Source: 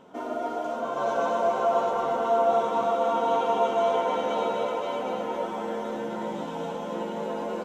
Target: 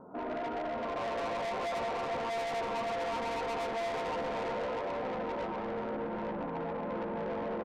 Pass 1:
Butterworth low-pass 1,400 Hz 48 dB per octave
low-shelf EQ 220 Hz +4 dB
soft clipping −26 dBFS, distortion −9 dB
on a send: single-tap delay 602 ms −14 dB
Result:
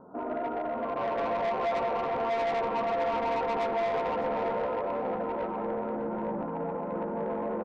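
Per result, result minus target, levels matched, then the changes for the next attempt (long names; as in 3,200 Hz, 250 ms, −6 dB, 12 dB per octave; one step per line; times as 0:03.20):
echo 230 ms late; soft clipping: distortion −4 dB
change: single-tap delay 372 ms −14 dB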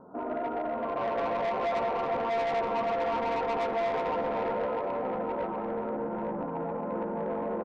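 soft clipping: distortion −4 dB
change: soft clipping −33 dBFS, distortion −5 dB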